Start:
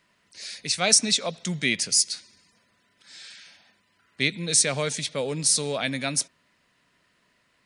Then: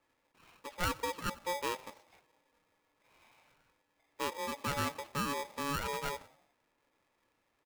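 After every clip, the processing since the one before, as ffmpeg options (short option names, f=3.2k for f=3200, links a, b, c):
-filter_complex "[0:a]lowpass=f=1.5k:w=0.5412,lowpass=f=1.5k:w=1.3066,asplit=5[a][b][c][d][e];[b]adelay=89,afreqshift=-41,volume=-21.5dB[f];[c]adelay=178,afreqshift=-82,volume=-27.3dB[g];[d]adelay=267,afreqshift=-123,volume=-33.2dB[h];[e]adelay=356,afreqshift=-164,volume=-39dB[i];[a][f][g][h][i]amix=inputs=5:normalize=0,aeval=exprs='val(0)*sgn(sin(2*PI*710*n/s))':c=same,volume=-6.5dB"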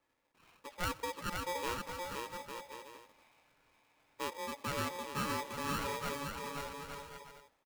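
-af "aecho=1:1:520|858|1078|1221|1313:0.631|0.398|0.251|0.158|0.1,volume=-3dB"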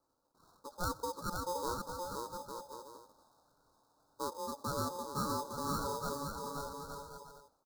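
-af "asuperstop=centerf=2400:order=12:qfactor=0.98,volume=1dB"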